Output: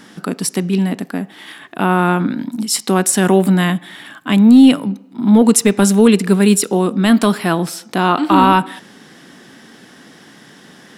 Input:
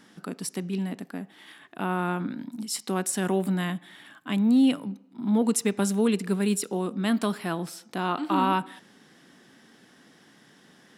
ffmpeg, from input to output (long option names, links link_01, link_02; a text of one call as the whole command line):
ffmpeg -i in.wav -af "apsyclip=15.5dB,volume=-2dB" out.wav